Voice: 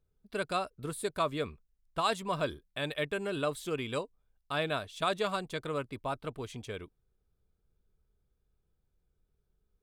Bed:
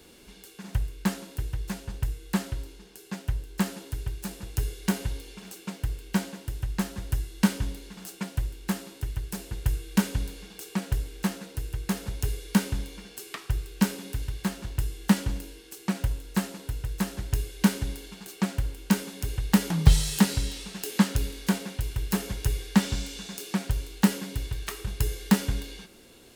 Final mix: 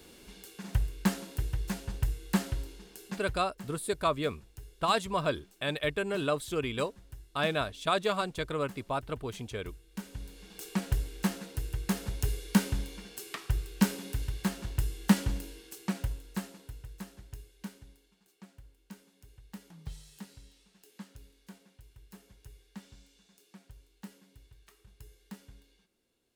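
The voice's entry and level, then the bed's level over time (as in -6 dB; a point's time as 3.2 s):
2.85 s, +2.5 dB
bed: 3.07 s -1 dB
3.51 s -19.5 dB
9.9 s -19.5 dB
10.64 s -2 dB
15.62 s -2 dB
18.12 s -25.5 dB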